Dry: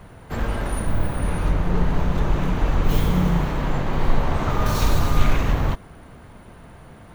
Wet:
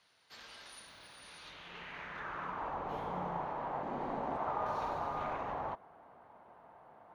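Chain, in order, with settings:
notch filter 7,600 Hz, Q 8.1
band-pass filter sweep 4,600 Hz → 820 Hz, 0:01.36–0:02.79
0:03.83–0:04.37: graphic EQ with 10 bands 250 Hz +10 dB, 1,000 Hz −4 dB, 8,000 Hz +7 dB
level −4 dB

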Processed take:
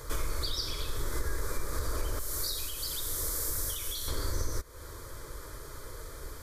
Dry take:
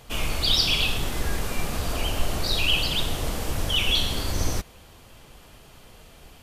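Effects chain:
0:02.19–0:04.08: first-order pre-emphasis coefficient 0.8
downward compressor 6 to 1, threshold −35 dBFS, peak gain reduction 17 dB
phaser with its sweep stopped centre 750 Hz, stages 6
level +8 dB

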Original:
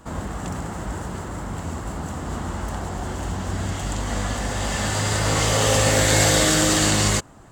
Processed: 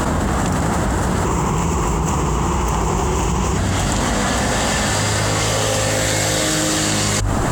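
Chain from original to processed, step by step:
0:01.25–0:03.58: EQ curve with evenly spaced ripples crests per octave 0.74, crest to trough 10 dB
speech leveller
mains-hum notches 50/100 Hz
envelope flattener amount 100%

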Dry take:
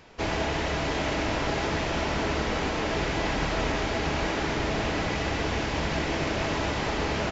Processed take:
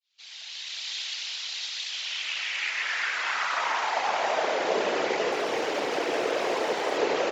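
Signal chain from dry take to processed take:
fade in at the beginning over 0.90 s
0:05.32–0:06.97: gain into a clipping stage and back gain 25 dB
random phases in short frames
high-pass filter sweep 3,800 Hz → 450 Hz, 0:01.86–0:04.85

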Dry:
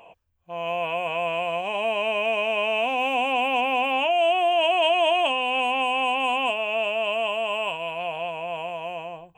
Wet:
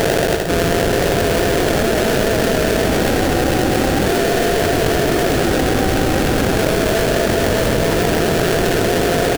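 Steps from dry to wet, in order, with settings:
sample-rate reduction 1,100 Hz, jitter 20%
on a send: bouncing-ball delay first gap 130 ms, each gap 0.75×, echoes 5
on the sum: envelope flattener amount 100%

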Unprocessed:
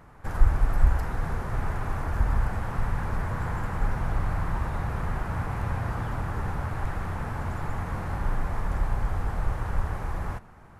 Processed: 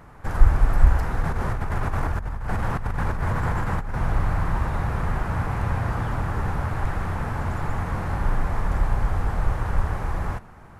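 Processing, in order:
0:01.21–0:03.94: compressor whose output falls as the input rises −29 dBFS, ratio −1
highs frequency-modulated by the lows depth 0.15 ms
level +4.5 dB

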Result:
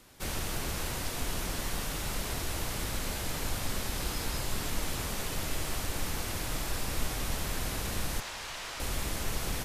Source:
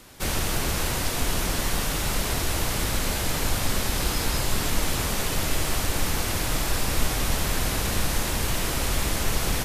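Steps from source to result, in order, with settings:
0:08.20–0:08.80: three-way crossover with the lows and the highs turned down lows −16 dB, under 590 Hz, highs −14 dB, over 7,300 Hz
level −8.5 dB

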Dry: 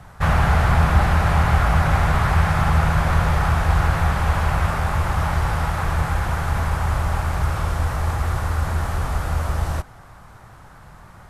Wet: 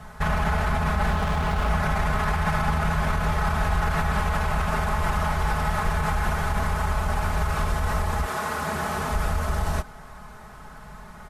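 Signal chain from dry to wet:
0:08.25–0:09.11: high-pass filter 280 Hz → 110 Hz 12 dB per octave
brickwall limiter −16.5 dBFS, peak gain reduction 11.5 dB
comb filter 4.7 ms, depth 77%
0:01.10–0:01.70: windowed peak hold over 9 samples

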